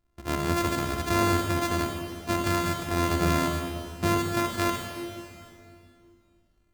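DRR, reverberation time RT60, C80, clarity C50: 2.0 dB, 2.4 s, 3.5 dB, 2.5 dB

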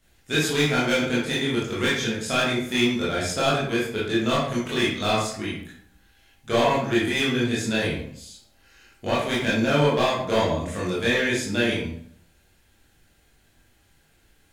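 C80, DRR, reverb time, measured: 6.0 dB, -8.0 dB, 0.60 s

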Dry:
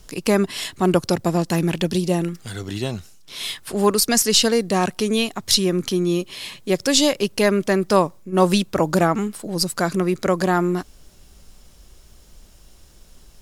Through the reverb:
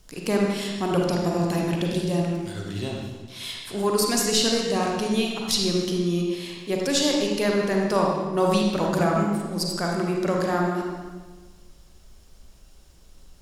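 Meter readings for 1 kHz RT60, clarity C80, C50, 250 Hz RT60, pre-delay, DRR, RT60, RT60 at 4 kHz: 1.3 s, 2.5 dB, 0.5 dB, 1.4 s, 34 ms, -1.0 dB, 1.4 s, 1.1 s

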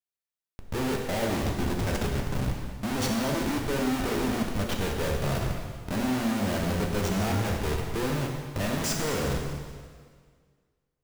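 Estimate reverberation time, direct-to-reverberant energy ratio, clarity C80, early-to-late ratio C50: 1.8 s, 0.0 dB, 4.5 dB, 3.0 dB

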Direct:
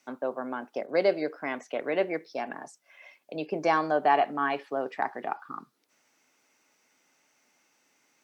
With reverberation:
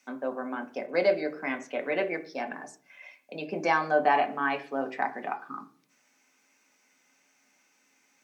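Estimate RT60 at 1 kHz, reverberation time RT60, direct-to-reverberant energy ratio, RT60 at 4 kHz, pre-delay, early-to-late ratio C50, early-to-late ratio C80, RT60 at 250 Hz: 0.40 s, 0.45 s, 5.0 dB, 0.45 s, 3 ms, 17.0 dB, 20.5 dB, 0.70 s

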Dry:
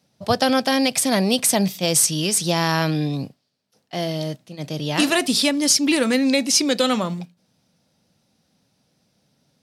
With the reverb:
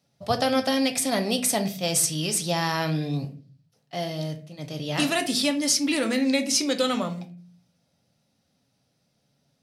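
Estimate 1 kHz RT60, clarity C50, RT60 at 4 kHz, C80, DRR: 0.35 s, 13.5 dB, 0.30 s, 18.0 dB, 5.5 dB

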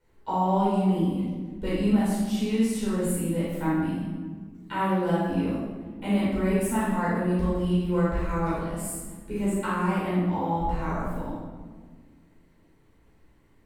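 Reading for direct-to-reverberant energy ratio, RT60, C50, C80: -10.0 dB, 1.6 s, -2.5 dB, 1.0 dB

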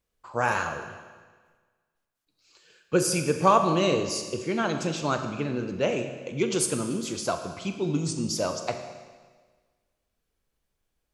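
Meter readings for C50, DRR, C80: 8.0 dB, 6.0 dB, 9.0 dB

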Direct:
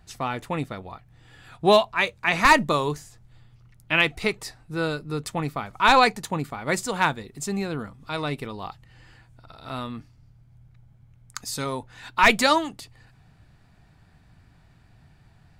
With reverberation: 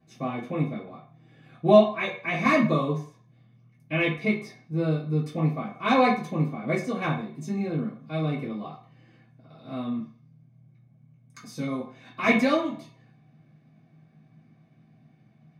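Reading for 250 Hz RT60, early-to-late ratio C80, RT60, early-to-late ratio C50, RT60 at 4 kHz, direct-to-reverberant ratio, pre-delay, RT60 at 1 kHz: 0.35 s, 11.0 dB, 0.45 s, 7.5 dB, 0.50 s, -10.0 dB, 3 ms, 0.45 s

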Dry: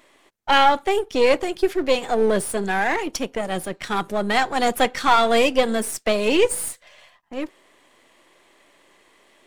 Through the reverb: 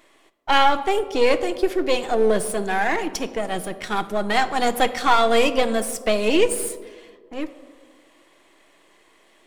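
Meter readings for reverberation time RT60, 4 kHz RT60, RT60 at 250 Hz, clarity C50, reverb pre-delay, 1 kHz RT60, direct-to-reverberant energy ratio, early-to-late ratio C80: 1.7 s, 0.75 s, 1.9 s, 14.0 dB, 3 ms, 1.5 s, 9.5 dB, 15.5 dB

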